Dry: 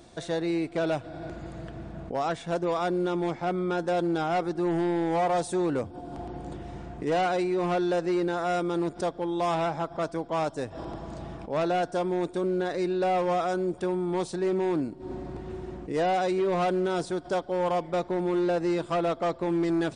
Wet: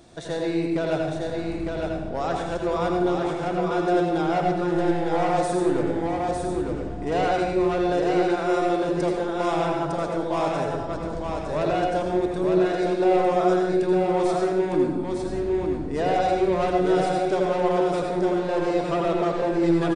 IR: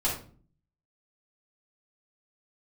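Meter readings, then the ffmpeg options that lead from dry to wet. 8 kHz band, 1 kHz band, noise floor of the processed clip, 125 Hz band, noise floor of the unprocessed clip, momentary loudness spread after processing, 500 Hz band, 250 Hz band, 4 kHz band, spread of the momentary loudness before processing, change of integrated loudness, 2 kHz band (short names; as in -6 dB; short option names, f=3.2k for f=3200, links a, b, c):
+3.0 dB, +4.5 dB, -30 dBFS, +4.5 dB, -46 dBFS, 7 LU, +5.0 dB, +4.5 dB, +3.5 dB, 13 LU, +4.5 dB, +4.0 dB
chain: -filter_complex "[0:a]aecho=1:1:906:0.631,asplit=2[a][b];[1:a]atrim=start_sample=2205,asetrate=25578,aresample=44100,adelay=77[c];[b][c]afir=irnorm=-1:irlink=0,volume=-13.5dB[d];[a][d]amix=inputs=2:normalize=0"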